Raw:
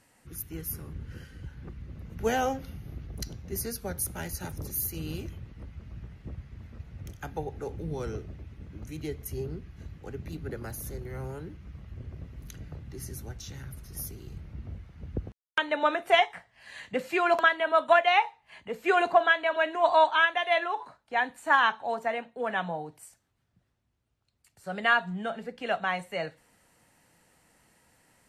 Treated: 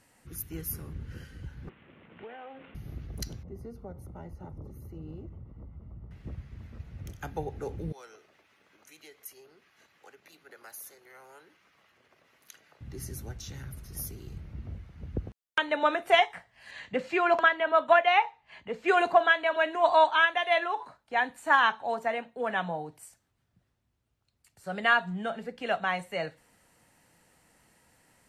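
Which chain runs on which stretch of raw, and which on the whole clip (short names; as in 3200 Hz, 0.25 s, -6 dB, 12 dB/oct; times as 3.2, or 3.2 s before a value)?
1.69–2.75 CVSD 16 kbps + HPF 320 Hz + compressor 12:1, threshold -41 dBFS
3.43–6.11 polynomial smoothing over 65 samples + compressor 2:1, threshold -43 dBFS
7.92–12.81 compressor 2:1, threshold -40 dBFS + HPF 820 Hz
16.71–18.88 LPF 5700 Hz + dynamic EQ 4200 Hz, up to -4 dB, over -45 dBFS, Q 1.8
whole clip: dry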